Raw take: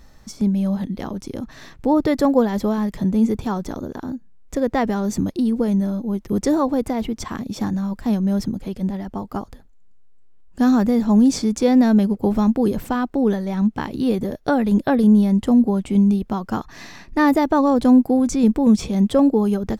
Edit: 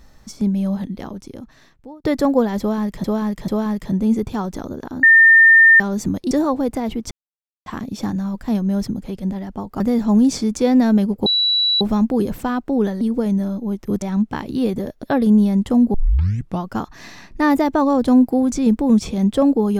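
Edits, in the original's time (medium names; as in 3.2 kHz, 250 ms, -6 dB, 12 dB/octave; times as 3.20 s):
0.73–2.04 s: fade out
2.60–3.04 s: loop, 3 plays
4.15–4.92 s: bleep 1.81 kHz -6 dBFS
5.43–6.44 s: move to 13.47 s
7.24 s: insert silence 0.55 s
9.38–10.81 s: delete
12.27 s: add tone 3.93 kHz -14 dBFS 0.55 s
14.48–14.80 s: delete
15.71 s: tape start 0.71 s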